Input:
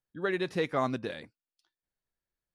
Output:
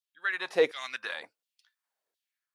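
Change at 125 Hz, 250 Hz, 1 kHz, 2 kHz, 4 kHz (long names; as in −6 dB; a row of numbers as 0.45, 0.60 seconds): below −15 dB, −9.5 dB, −5.5 dB, +5.5 dB, +4.5 dB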